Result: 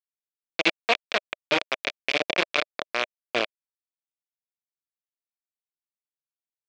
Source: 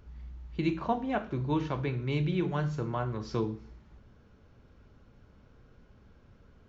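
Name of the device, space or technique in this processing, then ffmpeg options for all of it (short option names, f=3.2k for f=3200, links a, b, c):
hand-held game console: -af "acrusher=bits=3:mix=0:aa=0.000001,highpass=420,equalizer=f=610:t=q:w=4:g=6,equalizer=f=870:t=q:w=4:g=-8,equalizer=f=2.4k:t=q:w=4:g=9,equalizer=f=3.4k:t=q:w=4:g=5,lowpass=f=5.1k:w=0.5412,lowpass=f=5.1k:w=1.3066,volume=5.5dB"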